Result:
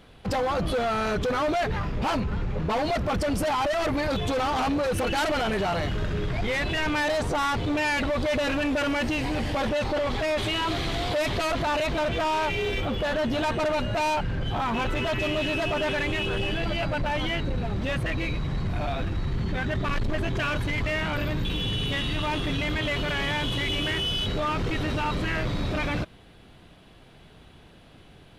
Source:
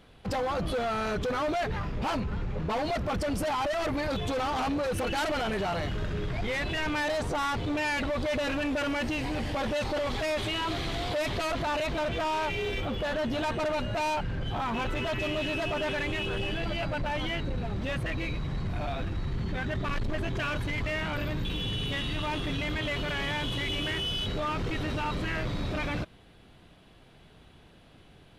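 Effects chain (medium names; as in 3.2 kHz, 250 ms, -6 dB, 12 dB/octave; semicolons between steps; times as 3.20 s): 9.69–10.38 s: treble shelf 4.3 kHz -6 dB; trim +4 dB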